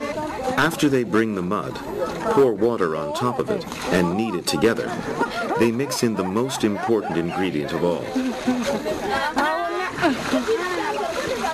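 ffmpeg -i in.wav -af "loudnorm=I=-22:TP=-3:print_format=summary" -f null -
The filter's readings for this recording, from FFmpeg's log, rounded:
Input Integrated:    -22.5 LUFS
Input True Peak:      -9.4 dBTP
Input LRA:             1.3 LU
Input Threshold:     -32.5 LUFS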